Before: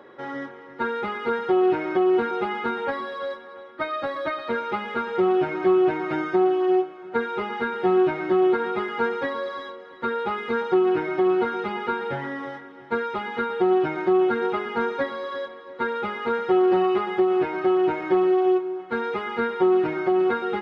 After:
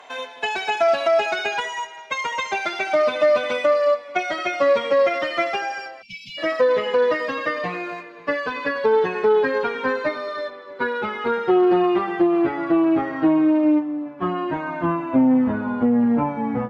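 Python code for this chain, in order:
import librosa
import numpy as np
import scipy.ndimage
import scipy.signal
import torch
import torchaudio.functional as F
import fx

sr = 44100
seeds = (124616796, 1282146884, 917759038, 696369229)

y = fx.speed_glide(x, sr, from_pct=188, to_pct=59)
y = fx.spec_erase(y, sr, start_s=6.02, length_s=0.36, low_hz=250.0, high_hz=2100.0)
y = F.gain(torch.from_numpy(y), 2.5).numpy()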